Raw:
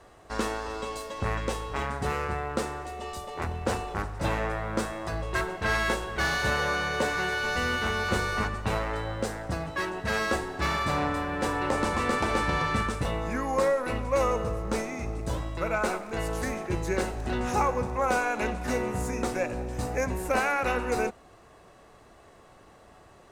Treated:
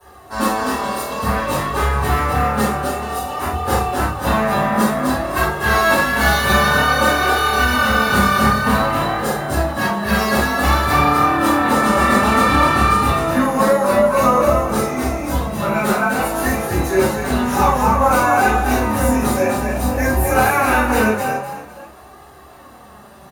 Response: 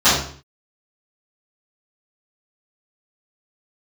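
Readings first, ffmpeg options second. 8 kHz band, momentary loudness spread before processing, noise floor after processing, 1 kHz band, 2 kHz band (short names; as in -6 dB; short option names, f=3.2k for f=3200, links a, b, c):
+12.5 dB, 7 LU, -42 dBFS, +14.0 dB, +11.5 dB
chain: -filter_complex "[0:a]asplit=5[a][b][c][d][e];[b]adelay=254,afreqshift=38,volume=-4dB[f];[c]adelay=508,afreqshift=76,volume=-13.6dB[g];[d]adelay=762,afreqshift=114,volume=-23.3dB[h];[e]adelay=1016,afreqshift=152,volume=-32.9dB[i];[a][f][g][h][i]amix=inputs=5:normalize=0,flanger=delay=2.4:depth=2.7:regen=37:speed=0.54:shape=sinusoidal,aexciter=amount=9.6:drive=6.6:freq=9.1k[j];[1:a]atrim=start_sample=2205,atrim=end_sample=4410[k];[j][k]afir=irnorm=-1:irlink=0,volume=-10dB"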